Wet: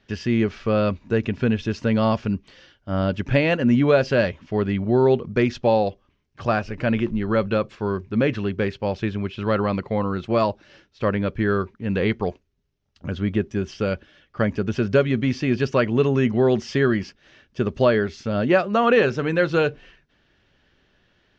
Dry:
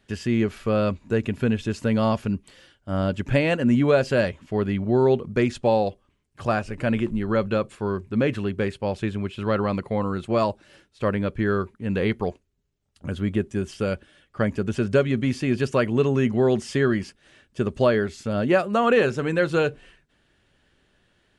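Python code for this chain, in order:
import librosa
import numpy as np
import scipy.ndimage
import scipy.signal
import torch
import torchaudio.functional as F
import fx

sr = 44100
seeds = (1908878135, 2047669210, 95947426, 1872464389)

y = scipy.signal.sosfilt(scipy.signal.cheby1(4, 1.0, 5900.0, 'lowpass', fs=sr, output='sos'), x)
y = F.gain(torch.from_numpy(y), 2.5).numpy()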